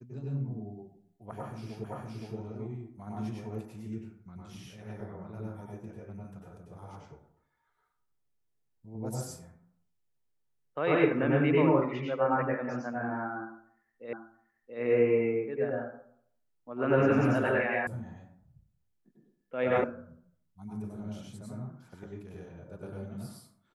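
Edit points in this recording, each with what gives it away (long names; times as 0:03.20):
0:01.84: the same again, the last 0.52 s
0:14.13: the same again, the last 0.68 s
0:17.87: cut off before it has died away
0:19.84: cut off before it has died away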